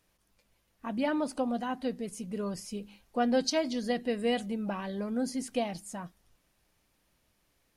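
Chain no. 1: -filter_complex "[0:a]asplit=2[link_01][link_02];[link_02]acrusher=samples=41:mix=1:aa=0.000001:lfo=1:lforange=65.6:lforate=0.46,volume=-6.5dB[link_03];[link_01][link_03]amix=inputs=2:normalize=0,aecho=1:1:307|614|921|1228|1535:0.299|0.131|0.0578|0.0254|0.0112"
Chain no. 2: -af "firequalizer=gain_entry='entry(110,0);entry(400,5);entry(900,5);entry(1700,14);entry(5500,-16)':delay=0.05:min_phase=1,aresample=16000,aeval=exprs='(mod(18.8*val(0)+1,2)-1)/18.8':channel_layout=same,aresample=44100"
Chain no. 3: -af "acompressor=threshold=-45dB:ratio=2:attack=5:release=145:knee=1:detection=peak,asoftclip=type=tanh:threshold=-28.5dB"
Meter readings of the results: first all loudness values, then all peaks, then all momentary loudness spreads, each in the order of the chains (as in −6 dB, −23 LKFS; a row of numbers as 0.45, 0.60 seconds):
−30.0, −31.5, −42.5 LKFS; −13.5, −21.0, −30.0 dBFS; 12, 9, 6 LU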